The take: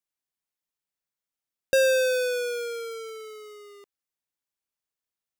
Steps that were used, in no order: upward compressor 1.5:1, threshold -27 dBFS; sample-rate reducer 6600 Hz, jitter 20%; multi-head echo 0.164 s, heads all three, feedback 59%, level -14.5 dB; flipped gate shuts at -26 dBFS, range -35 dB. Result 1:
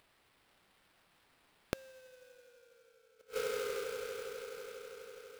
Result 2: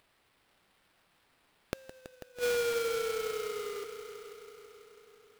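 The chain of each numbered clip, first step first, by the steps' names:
multi-head echo > upward compressor > flipped gate > sample-rate reducer; upward compressor > flipped gate > multi-head echo > sample-rate reducer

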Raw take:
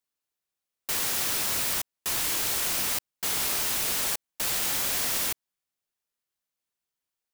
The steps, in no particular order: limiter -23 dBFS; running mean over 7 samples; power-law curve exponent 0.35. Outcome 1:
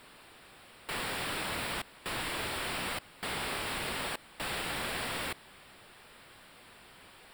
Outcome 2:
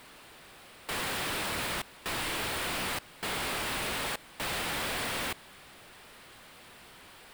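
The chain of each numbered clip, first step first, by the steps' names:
limiter > power-law curve > running mean; limiter > running mean > power-law curve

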